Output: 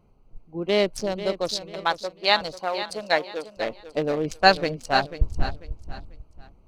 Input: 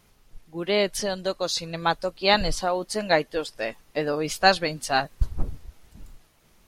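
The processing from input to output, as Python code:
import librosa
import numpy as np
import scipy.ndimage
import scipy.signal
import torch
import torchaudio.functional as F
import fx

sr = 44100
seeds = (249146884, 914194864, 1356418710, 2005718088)

y = fx.wiener(x, sr, points=25)
y = fx.highpass(y, sr, hz=720.0, slope=6, at=(1.56, 3.57))
y = fx.echo_feedback(y, sr, ms=492, feedback_pct=31, wet_db=-12.0)
y = y * 10.0 ** (2.0 / 20.0)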